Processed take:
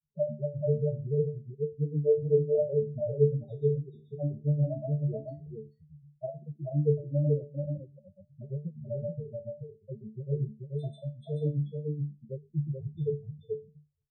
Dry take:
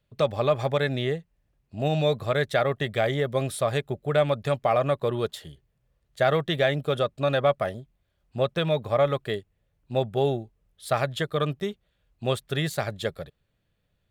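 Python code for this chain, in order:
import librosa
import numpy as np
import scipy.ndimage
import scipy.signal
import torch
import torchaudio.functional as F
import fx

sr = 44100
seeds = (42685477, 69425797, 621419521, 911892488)

p1 = fx.spec_ripple(x, sr, per_octave=1.6, drift_hz=-0.83, depth_db=14)
p2 = scipy.signal.sosfilt(scipy.signal.butter(2, 110.0, 'highpass', fs=sr, output='sos'), p1)
p3 = fx.tilt_eq(p2, sr, slope=-3.5)
p4 = fx.hum_notches(p3, sr, base_hz=50, count=8)
p5 = fx.rider(p4, sr, range_db=10, speed_s=0.5)
p6 = p4 + F.gain(torch.from_numpy(p5), 1.0).numpy()
p7 = fx.env_flanger(p6, sr, rest_ms=2.2, full_db=-7.0)
p8 = fx.spec_topn(p7, sr, count=4)
p9 = fx.granulator(p8, sr, seeds[0], grain_ms=119.0, per_s=7.9, spray_ms=100.0, spread_st=0)
p10 = fx.resonator_bank(p9, sr, root=50, chord='fifth', decay_s=0.28)
p11 = fx.wow_flutter(p10, sr, seeds[1], rate_hz=2.1, depth_cents=25.0)
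y = p11 + fx.echo_single(p11, sr, ms=433, db=-3.5, dry=0)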